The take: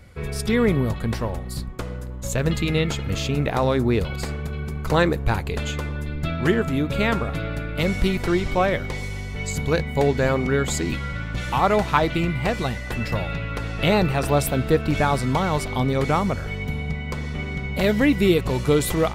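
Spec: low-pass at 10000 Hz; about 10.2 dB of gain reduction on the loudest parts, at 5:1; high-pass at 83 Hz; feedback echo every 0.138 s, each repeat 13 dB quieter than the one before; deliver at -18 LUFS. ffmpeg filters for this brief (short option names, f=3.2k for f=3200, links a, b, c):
-af "highpass=83,lowpass=10k,acompressor=threshold=-25dB:ratio=5,aecho=1:1:138|276|414:0.224|0.0493|0.0108,volume=11.5dB"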